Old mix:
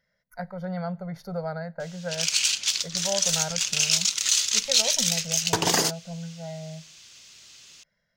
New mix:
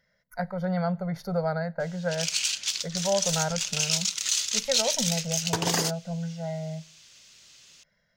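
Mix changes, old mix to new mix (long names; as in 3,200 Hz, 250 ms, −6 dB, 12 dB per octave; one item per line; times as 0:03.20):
speech +4.0 dB
background −4.0 dB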